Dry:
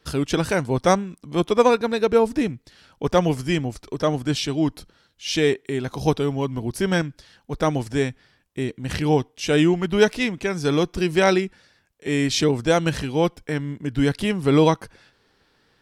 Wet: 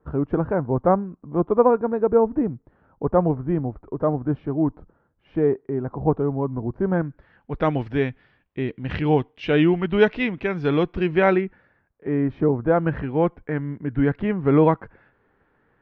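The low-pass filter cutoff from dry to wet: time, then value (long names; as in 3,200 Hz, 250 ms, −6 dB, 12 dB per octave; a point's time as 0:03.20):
low-pass filter 24 dB per octave
0:06.91 1,200 Hz
0:07.64 2,900 Hz
0:10.87 2,900 Hz
0:12.48 1,200 Hz
0:13.04 1,900 Hz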